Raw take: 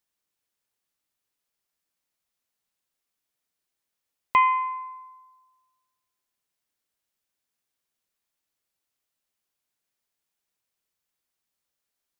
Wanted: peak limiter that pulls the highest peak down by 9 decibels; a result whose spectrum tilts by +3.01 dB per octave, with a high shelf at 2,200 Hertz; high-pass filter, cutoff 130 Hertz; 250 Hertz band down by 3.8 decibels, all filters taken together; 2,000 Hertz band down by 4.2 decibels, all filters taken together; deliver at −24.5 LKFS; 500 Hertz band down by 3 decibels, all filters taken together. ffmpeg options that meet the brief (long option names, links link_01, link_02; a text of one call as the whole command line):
ffmpeg -i in.wav -af "highpass=130,equalizer=frequency=250:width_type=o:gain=-3.5,equalizer=frequency=500:width_type=o:gain=-3,equalizer=frequency=2000:width_type=o:gain=-6,highshelf=frequency=2200:gain=3.5,volume=5.5dB,alimiter=limit=-16dB:level=0:latency=1" out.wav